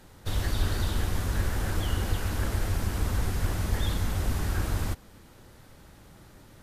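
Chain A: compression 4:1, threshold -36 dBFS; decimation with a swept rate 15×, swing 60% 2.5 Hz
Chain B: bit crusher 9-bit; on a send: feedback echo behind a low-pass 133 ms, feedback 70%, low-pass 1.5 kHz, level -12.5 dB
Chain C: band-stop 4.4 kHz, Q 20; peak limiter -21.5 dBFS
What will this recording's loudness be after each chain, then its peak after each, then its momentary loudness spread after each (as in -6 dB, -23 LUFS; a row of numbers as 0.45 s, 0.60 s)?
-41.0 LUFS, -30.5 LUFS, -33.0 LUFS; -26.0 dBFS, -14.0 dBFS, -21.5 dBFS; 13 LU, 15 LU, 4 LU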